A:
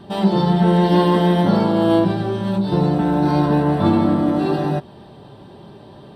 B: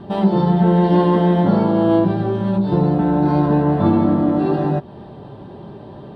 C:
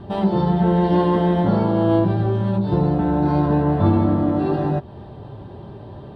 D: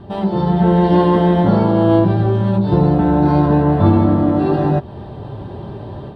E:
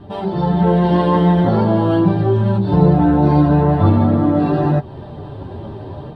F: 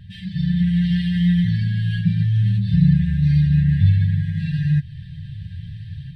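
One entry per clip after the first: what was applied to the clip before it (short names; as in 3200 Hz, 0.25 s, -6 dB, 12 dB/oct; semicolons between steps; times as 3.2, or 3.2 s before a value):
LPF 1300 Hz 6 dB/oct; in parallel at +1 dB: compressor, threshold -26 dBFS, peak gain reduction 14.5 dB; on the sum: gain -1 dB
resonant low shelf 130 Hz +6.5 dB, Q 1.5; gain -2 dB
AGC gain up to 7.5 dB
chorus voices 4, 0.42 Hz, delay 10 ms, depth 3.3 ms; gain +2.5 dB
brick-wall FIR band-stop 190–1600 Hz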